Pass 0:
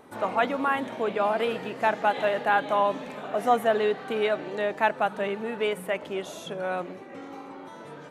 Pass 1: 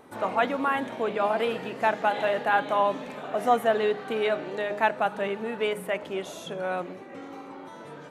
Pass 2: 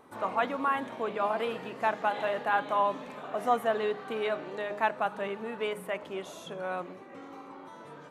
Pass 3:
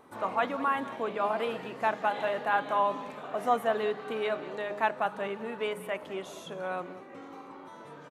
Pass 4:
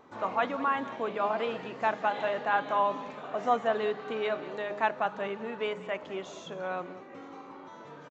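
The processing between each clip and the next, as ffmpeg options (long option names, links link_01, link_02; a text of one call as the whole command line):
ffmpeg -i in.wav -af "bandreject=frequency=206.5:width_type=h:width=4,bandreject=frequency=413:width_type=h:width=4,bandreject=frequency=619.5:width_type=h:width=4,bandreject=frequency=826:width_type=h:width=4,bandreject=frequency=1032.5:width_type=h:width=4,bandreject=frequency=1239:width_type=h:width=4,bandreject=frequency=1445.5:width_type=h:width=4,bandreject=frequency=1652:width_type=h:width=4,bandreject=frequency=1858.5:width_type=h:width=4,bandreject=frequency=2065:width_type=h:width=4,bandreject=frequency=2271.5:width_type=h:width=4,bandreject=frequency=2478:width_type=h:width=4,bandreject=frequency=2684.5:width_type=h:width=4,bandreject=frequency=2891:width_type=h:width=4,bandreject=frequency=3097.5:width_type=h:width=4,bandreject=frequency=3304:width_type=h:width=4,bandreject=frequency=3510.5:width_type=h:width=4,bandreject=frequency=3717:width_type=h:width=4,bandreject=frequency=3923.5:width_type=h:width=4,bandreject=frequency=4130:width_type=h:width=4,bandreject=frequency=4336.5:width_type=h:width=4,bandreject=frequency=4543:width_type=h:width=4,bandreject=frequency=4749.5:width_type=h:width=4,bandreject=frequency=4956:width_type=h:width=4,bandreject=frequency=5162.5:width_type=h:width=4,bandreject=frequency=5369:width_type=h:width=4,bandreject=frequency=5575.5:width_type=h:width=4,bandreject=frequency=5782:width_type=h:width=4,bandreject=frequency=5988.5:width_type=h:width=4,bandreject=frequency=6195:width_type=h:width=4,bandreject=frequency=6401.5:width_type=h:width=4,bandreject=frequency=6608:width_type=h:width=4,bandreject=frequency=6814.5:width_type=h:width=4,bandreject=frequency=7021:width_type=h:width=4,bandreject=frequency=7227.5:width_type=h:width=4,bandreject=frequency=7434:width_type=h:width=4,bandreject=frequency=7640.5:width_type=h:width=4,bandreject=frequency=7847:width_type=h:width=4" out.wav
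ffmpeg -i in.wav -af "equalizer=frequency=1100:width_type=o:width=0.44:gain=5.5,volume=-5.5dB" out.wav
ffmpeg -i in.wav -filter_complex "[0:a]asplit=2[link_01][link_02];[link_02]adelay=192.4,volume=-16dB,highshelf=frequency=4000:gain=-4.33[link_03];[link_01][link_03]amix=inputs=2:normalize=0" out.wav
ffmpeg -i in.wav -af "aresample=16000,aresample=44100" out.wav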